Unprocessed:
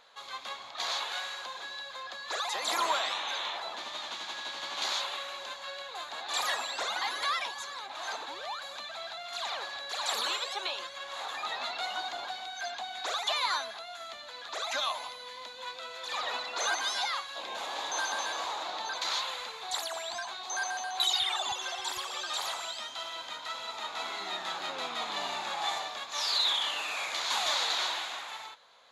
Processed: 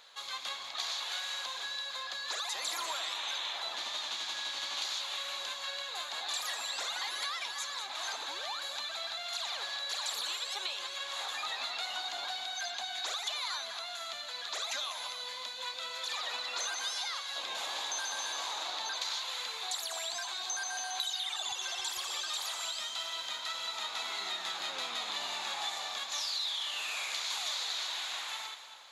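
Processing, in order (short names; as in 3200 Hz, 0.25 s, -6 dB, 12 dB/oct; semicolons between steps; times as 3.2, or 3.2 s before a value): high shelf 2000 Hz +11.5 dB; compressor, threshold -30 dBFS, peak gain reduction 13.5 dB; split-band echo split 1500 Hz, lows 0.278 s, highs 0.196 s, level -11 dB; gain -4 dB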